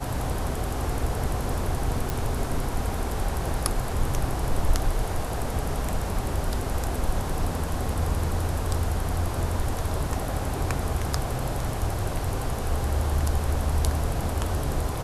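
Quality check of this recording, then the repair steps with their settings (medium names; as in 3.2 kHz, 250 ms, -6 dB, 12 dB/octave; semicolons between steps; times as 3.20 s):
2.10 s: pop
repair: de-click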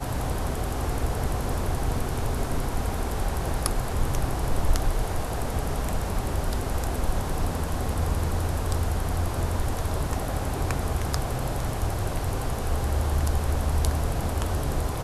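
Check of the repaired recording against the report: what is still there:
nothing left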